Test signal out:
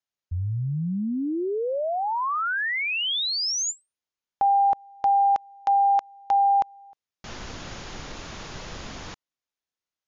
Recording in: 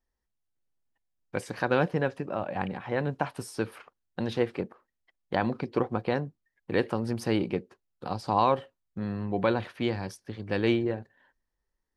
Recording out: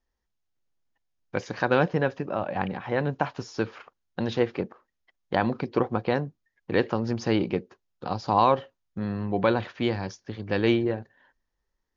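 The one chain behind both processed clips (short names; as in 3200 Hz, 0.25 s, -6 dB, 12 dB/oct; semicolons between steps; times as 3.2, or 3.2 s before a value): Chebyshev low-pass 7000 Hz, order 10; gain +3.5 dB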